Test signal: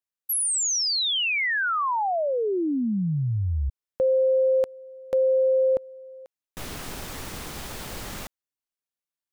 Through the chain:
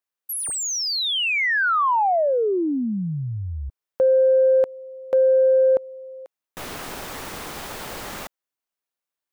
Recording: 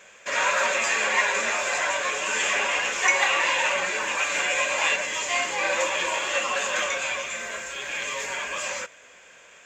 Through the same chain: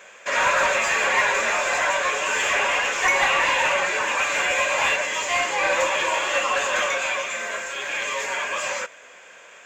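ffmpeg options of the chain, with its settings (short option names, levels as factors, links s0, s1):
-filter_complex "[0:a]aemphasis=mode=production:type=50kf,asplit=2[s0][s1];[s1]highpass=f=720:p=1,volume=5.62,asoftclip=type=tanh:threshold=0.708[s2];[s0][s2]amix=inputs=2:normalize=0,lowpass=f=1000:p=1,volume=0.501"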